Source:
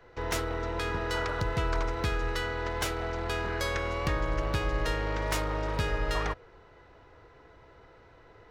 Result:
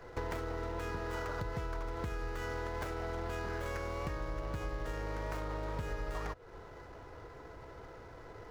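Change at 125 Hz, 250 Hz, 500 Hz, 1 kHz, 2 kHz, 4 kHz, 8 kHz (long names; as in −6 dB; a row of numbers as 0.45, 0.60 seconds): −7.5, −7.0, −7.0, −7.5, −10.0, −14.0, −13.0 decibels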